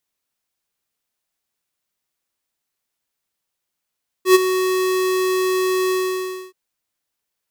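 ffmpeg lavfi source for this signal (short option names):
-f lavfi -i "aevalsrc='0.398*(2*lt(mod(372*t,1),0.5)-1)':d=2.276:s=44100,afade=t=in:d=0.099,afade=t=out:st=0.099:d=0.024:silence=0.282,afade=t=out:st=1.66:d=0.616"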